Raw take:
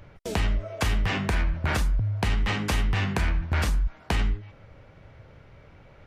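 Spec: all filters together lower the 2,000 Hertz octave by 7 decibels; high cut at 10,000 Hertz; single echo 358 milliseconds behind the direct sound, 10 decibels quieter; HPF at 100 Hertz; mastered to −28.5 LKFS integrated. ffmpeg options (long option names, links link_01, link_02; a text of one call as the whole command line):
ffmpeg -i in.wav -af "highpass=100,lowpass=10000,equalizer=frequency=2000:width_type=o:gain=-9,aecho=1:1:358:0.316,volume=3dB" out.wav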